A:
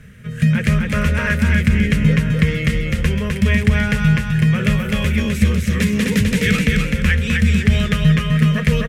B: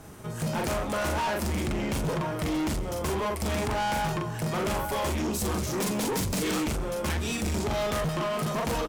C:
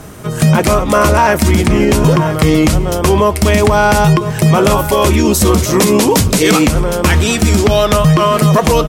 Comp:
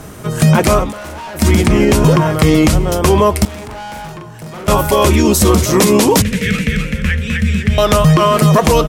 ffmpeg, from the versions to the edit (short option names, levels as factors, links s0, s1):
-filter_complex "[1:a]asplit=2[s0][s1];[2:a]asplit=4[s2][s3][s4][s5];[s2]atrim=end=0.93[s6];[s0]atrim=start=0.83:end=1.44[s7];[s3]atrim=start=1.34:end=3.452[s8];[s1]atrim=start=3.448:end=4.682[s9];[s4]atrim=start=4.678:end=6.222[s10];[0:a]atrim=start=6.218:end=7.782[s11];[s5]atrim=start=7.778[s12];[s6][s7]acrossfade=d=0.1:c1=tri:c2=tri[s13];[s13][s8]acrossfade=d=0.1:c1=tri:c2=tri[s14];[s14][s9]acrossfade=d=0.004:c1=hsin:c2=hsin[s15];[s15][s10]acrossfade=d=0.004:c1=hsin:c2=hsin[s16];[s16][s11]acrossfade=d=0.004:c1=hsin:c2=hsin[s17];[s17][s12]acrossfade=d=0.004:c1=hsin:c2=hsin"